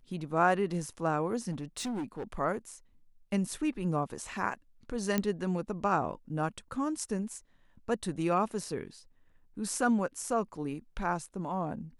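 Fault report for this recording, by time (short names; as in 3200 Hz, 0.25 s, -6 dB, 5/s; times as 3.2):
1.51–2.35 clipped -32 dBFS
5.18 pop -14 dBFS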